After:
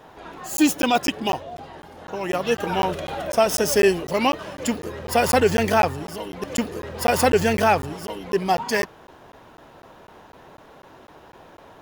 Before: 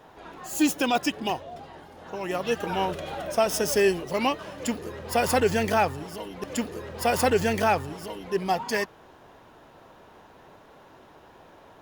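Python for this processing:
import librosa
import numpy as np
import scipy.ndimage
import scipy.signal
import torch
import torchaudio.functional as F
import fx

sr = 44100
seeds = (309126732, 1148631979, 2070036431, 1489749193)

y = fx.buffer_crackle(x, sr, first_s=0.57, period_s=0.25, block=512, kind='zero')
y = y * librosa.db_to_amplitude(4.5)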